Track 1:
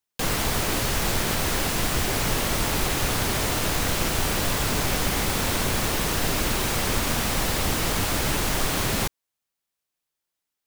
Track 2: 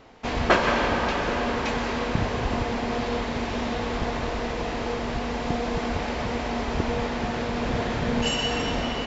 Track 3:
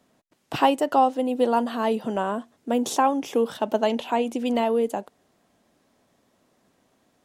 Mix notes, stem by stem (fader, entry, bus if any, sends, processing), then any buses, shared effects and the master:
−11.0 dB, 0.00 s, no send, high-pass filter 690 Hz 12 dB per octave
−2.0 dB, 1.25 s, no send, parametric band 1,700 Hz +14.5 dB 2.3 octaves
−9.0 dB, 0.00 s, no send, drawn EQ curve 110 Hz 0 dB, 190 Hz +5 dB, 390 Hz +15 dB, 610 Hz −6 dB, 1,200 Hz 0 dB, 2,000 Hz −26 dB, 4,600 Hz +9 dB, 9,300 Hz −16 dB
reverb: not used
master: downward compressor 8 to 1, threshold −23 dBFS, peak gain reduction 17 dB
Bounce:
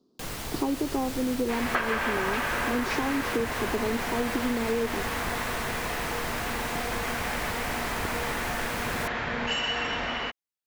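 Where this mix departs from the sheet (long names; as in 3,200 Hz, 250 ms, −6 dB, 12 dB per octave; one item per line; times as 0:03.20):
stem 1: missing high-pass filter 690 Hz 12 dB per octave
stem 2 −2.0 dB → −10.5 dB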